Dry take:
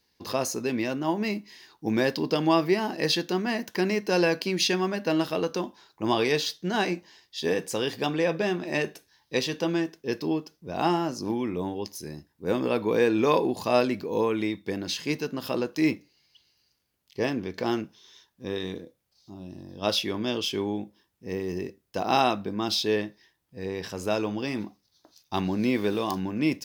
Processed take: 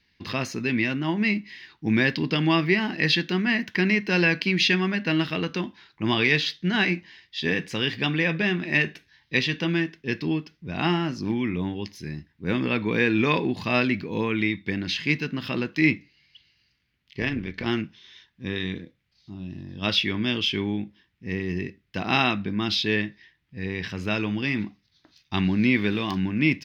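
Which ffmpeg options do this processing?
ffmpeg -i in.wav -filter_complex "[0:a]asettb=1/sr,asplit=3[link_01][link_02][link_03];[link_01]atrim=end=17.204[link_04];[link_02]atrim=start=17.2:end=17.67,asetpts=PTS-STARTPTS,afade=type=in:duration=0.004:curve=qsin,afade=type=out:start_time=0.466:duration=0.004:curve=qsin,tremolo=f=160:d=0.571[link_05];[link_03]atrim=start=17.666[link_06];[link_04][link_05]acrossfade=duration=0.004:curve1=hsin:curve2=qsin[link_07];[link_07][link_06]acrossfade=duration=0.004:curve1=qsin:curve2=hsin,firequalizer=gain_entry='entry(160,0);entry(500,-14);entry(820,-12);entry(2000,4);entry(7500,-20);entry(11000,-22)':delay=0.05:min_phase=1,volume=7.5dB" out.wav

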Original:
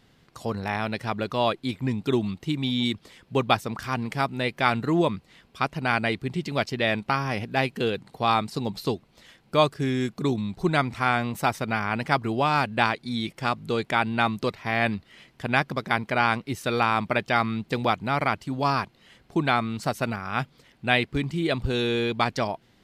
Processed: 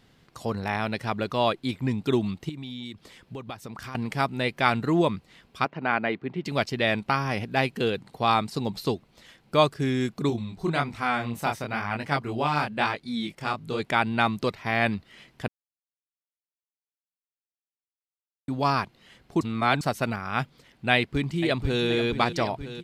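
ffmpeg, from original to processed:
ffmpeg -i in.wav -filter_complex "[0:a]asettb=1/sr,asplit=3[link_01][link_02][link_03];[link_01]atrim=end=2.494[link_04];[link_02]atrim=start=2.49:end=3.95,asetpts=PTS-STARTPTS,afade=type=in:duration=0.004:curve=qsin,afade=type=out:start_time=1.456:duration=0.004:curve=qsin,acompressor=threshold=-35dB:ratio=5:attack=3.2:release=140:knee=1:detection=peak[link_05];[link_03]atrim=start=3.946[link_06];[link_04][link_05]acrossfade=duration=0.004:curve1=hsin:curve2=qsin[link_07];[link_07][link_06]acrossfade=duration=0.004:curve1=qsin:curve2=hsin,asplit=3[link_08][link_09][link_10];[link_08]afade=type=out:start_time=5.64:duration=0.02[link_11];[link_09]highpass=200,lowpass=2200,afade=type=in:start_time=5.64:duration=0.02,afade=type=out:start_time=6.44:duration=0.02[link_12];[link_10]afade=type=in:start_time=6.44:duration=0.02[link_13];[link_11][link_12][link_13]amix=inputs=3:normalize=0,asplit=3[link_14][link_15][link_16];[link_14]afade=type=out:start_time=10.29:duration=0.02[link_17];[link_15]flanger=delay=19.5:depth=7.9:speed=1,afade=type=in:start_time=10.29:duration=0.02,afade=type=out:start_time=13.79:duration=0.02[link_18];[link_16]afade=type=in:start_time=13.79:duration=0.02[link_19];[link_17][link_18][link_19]amix=inputs=3:normalize=0,asplit=2[link_20][link_21];[link_21]afade=type=in:start_time=20.94:duration=0.01,afade=type=out:start_time=21.84:duration=0.01,aecho=0:1:480|960|1440|1920|2400|2880|3360|3840|4320|4800|5280|5760:0.281838|0.225471|0.180377|0.144301|0.115441|0.0923528|0.0738822|0.0591058|0.0472846|0.0378277|0.0302622|0.0242097[link_22];[link_20][link_22]amix=inputs=2:normalize=0,asplit=5[link_23][link_24][link_25][link_26][link_27];[link_23]atrim=end=15.48,asetpts=PTS-STARTPTS,afade=type=out:start_time=15.476:duration=0.004:curve=hsin[link_28];[link_24]atrim=start=15.48:end=18.48,asetpts=PTS-STARTPTS,volume=0[link_29];[link_25]atrim=start=18.48:end=19.412,asetpts=PTS-STARTPTS,afade=type=in:duration=0.004:curve=hsin[link_30];[link_26]atrim=start=19.408:end=19.812,asetpts=PTS-STARTPTS,areverse[link_31];[link_27]atrim=start=19.808[link_32];[link_28][link_29][link_30]concat=n=3:v=0:a=1[link_33];[link_33][link_31]acrossfade=duration=0.004:curve1=hsin:curve2=hsin[link_34];[link_34][link_32]acrossfade=duration=0.004:curve1=hsin:curve2=hsin" out.wav

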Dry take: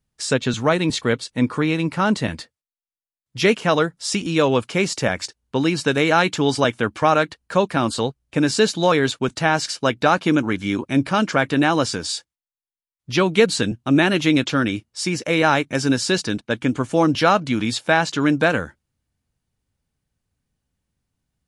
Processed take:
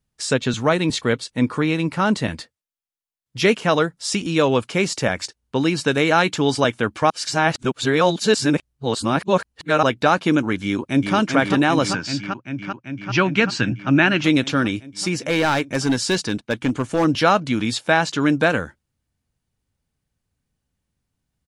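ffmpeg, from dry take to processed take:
ffmpeg -i in.wav -filter_complex "[0:a]asplit=2[link_01][link_02];[link_02]afade=type=in:start_time=10.63:duration=0.01,afade=type=out:start_time=11.16:duration=0.01,aecho=0:1:390|780|1170|1560|1950|2340|2730|3120|3510|3900|4290|4680:0.595662|0.47653|0.381224|0.304979|0.243983|0.195187|0.156149|0.124919|0.0999355|0.0799484|0.0639587|0.051167[link_03];[link_01][link_03]amix=inputs=2:normalize=0,asettb=1/sr,asplit=3[link_04][link_05][link_06];[link_04]atrim=end=11.934[link_07];[link_05]atrim=start=11.93:end=14.24,asetpts=PTS-STARTPTS,afade=type=in:duration=0.004:curve=qsin,afade=type=out:start_time=2.306:duration=0.004:curve=qsin,highpass=110,equalizer=frequency=120:width_type=q:width=4:gain=9,equalizer=frequency=450:width_type=q:width=4:gain=-9,equalizer=frequency=1500:width_type=q:width=4:gain=7,equalizer=frequency=2600:width_type=q:width=4:gain=5,equalizer=frequency=3700:width_type=q:width=4:gain=-8,lowpass=frequency=6000:width=0.5412,lowpass=frequency=6000:width=1.3066[link_08];[link_06]atrim=start=14.236[link_09];[link_07][link_08]acrossfade=duration=0.004:curve1=hsin:curve2=qsin[link_10];[link_10][link_09]acrossfade=duration=0.004:curve1=qsin:curve2=hsin,asettb=1/sr,asplit=3[link_11][link_12][link_13];[link_11]atrim=end=14.884[link_14];[link_12]atrim=start=14.88:end=17.05,asetpts=PTS-STARTPTS,afade=type=in:duration=0.004:curve=qsin,afade=type=out:start_time=2.166:duration=0.004:curve=qsin,asoftclip=type=hard:threshold=-13.5dB[link_15];[link_13]atrim=start=17.046[link_16];[link_14][link_15]acrossfade=duration=0.004:curve1=hsin:curve2=qsin[link_17];[link_17][link_16]acrossfade=duration=0.004:curve1=qsin:curve2=hsin,asplit=3[link_18][link_19][link_20];[link_18]atrim=end=7.102[link_21];[link_19]atrim=start=7.098:end=9.832,asetpts=PTS-STARTPTS,areverse[link_22];[link_20]atrim=start=9.828[link_23];[link_21][link_22]acrossfade=duration=0.004:curve1=hsin:curve2=hsin[link_24];[link_24][link_23]acrossfade=duration=0.004:curve1=hsin:curve2=hsin" out.wav

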